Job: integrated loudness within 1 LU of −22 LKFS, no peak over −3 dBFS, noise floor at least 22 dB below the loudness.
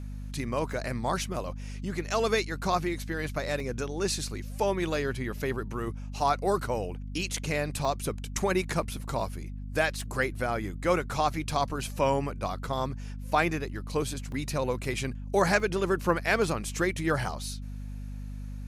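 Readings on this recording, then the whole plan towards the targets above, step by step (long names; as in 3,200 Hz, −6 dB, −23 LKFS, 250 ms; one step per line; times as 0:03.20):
number of dropouts 7; longest dropout 1.9 ms; mains hum 50 Hz; hum harmonics up to 250 Hz; level of the hum −35 dBFS; integrated loudness −30.0 LKFS; sample peak −10.0 dBFS; target loudness −22.0 LKFS
→ repair the gap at 0:00.73/0:02.11/0:03.60/0:07.85/0:10.01/0:14.32/0:15.60, 1.9 ms
hum removal 50 Hz, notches 5
level +8 dB
brickwall limiter −3 dBFS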